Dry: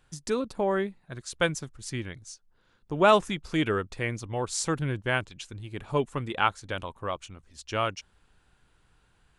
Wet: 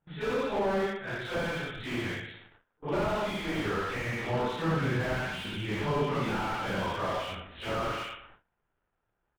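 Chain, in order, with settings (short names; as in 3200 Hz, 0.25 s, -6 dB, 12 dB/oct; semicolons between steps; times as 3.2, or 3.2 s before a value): phase scrambler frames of 0.2 s; compressor 2.5:1, threshold -34 dBFS, peak gain reduction 13 dB; tilt shelf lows -7 dB, about 650 Hz; crackle 210/s -45 dBFS; 4.34–6.93 bell 190 Hz +10.5 dB 0.66 oct; feedback echo 0.118 s, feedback 34%, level -10 dB; low-pass opened by the level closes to 950 Hz, open at -31 dBFS; notch 1100 Hz, Q 13; de-hum 148.3 Hz, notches 11; gate with hold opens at -49 dBFS; downsampling 8000 Hz; slew limiter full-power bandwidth 12 Hz; gain +8.5 dB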